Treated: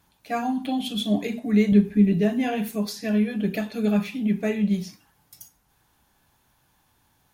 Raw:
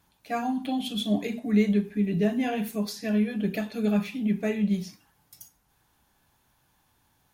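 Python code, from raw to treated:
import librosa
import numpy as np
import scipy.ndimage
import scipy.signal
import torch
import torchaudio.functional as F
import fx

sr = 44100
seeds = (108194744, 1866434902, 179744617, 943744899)

y = fx.low_shelf(x, sr, hz=240.0, db=10.0, at=(1.72, 2.13))
y = y * 10.0 ** (2.5 / 20.0)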